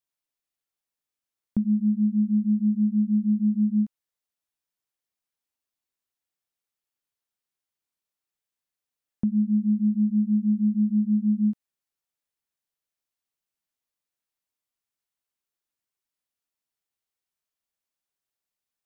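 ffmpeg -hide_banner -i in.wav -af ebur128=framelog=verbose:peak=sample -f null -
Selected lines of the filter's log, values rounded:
Integrated loudness:
  I:         -23.8 LUFS
  Threshold: -33.9 LUFS
Loudness range:
  LRA:         8.6 LU
  Threshold: -46.5 LUFS
  LRA low:   -32.9 LUFS
  LRA high:  -24.3 LUFS
Sample peak:
  Peak:      -16.2 dBFS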